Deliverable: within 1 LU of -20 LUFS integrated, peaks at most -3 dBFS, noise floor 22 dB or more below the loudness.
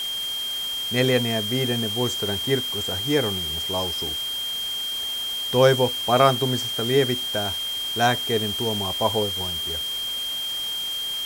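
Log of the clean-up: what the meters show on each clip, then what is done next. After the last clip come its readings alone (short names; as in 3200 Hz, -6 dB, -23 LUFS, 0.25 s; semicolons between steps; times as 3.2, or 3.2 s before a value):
steady tone 3200 Hz; tone level -26 dBFS; noise floor -29 dBFS; noise floor target -45 dBFS; loudness -23.0 LUFS; peak -3.0 dBFS; loudness target -20.0 LUFS
-> notch 3200 Hz, Q 30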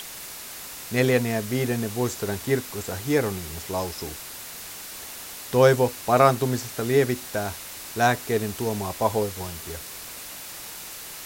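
steady tone none; noise floor -39 dBFS; noise floor target -48 dBFS
-> noise print and reduce 9 dB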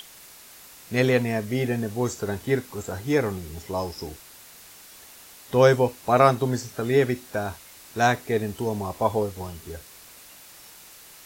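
noise floor -48 dBFS; loudness -24.5 LUFS; peak -3.5 dBFS; loudness target -20.0 LUFS
-> gain +4.5 dB; limiter -3 dBFS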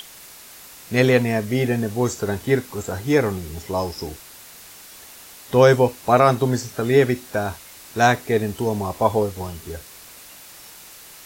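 loudness -20.5 LUFS; peak -3.0 dBFS; noise floor -43 dBFS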